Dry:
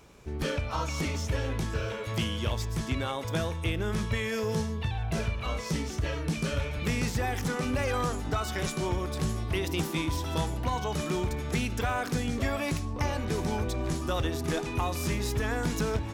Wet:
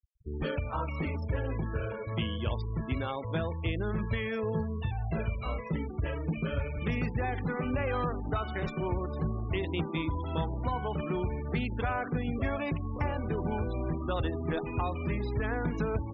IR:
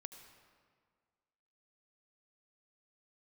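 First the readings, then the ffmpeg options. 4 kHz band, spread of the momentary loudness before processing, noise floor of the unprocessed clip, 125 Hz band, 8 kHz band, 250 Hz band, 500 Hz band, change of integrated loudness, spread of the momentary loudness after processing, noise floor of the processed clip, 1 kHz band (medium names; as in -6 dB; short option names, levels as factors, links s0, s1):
-8.0 dB, 2 LU, -36 dBFS, -1.5 dB, under -30 dB, -1.5 dB, -1.5 dB, -2.0 dB, 3 LU, -39 dBFS, -2.0 dB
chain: -af "adynamicsmooth=sensitivity=3.5:basefreq=3000,afftfilt=real='re*gte(hypot(re,im),0.0158)':imag='im*gte(hypot(re,im),0.0158)':win_size=1024:overlap=0.75,volume=0.841"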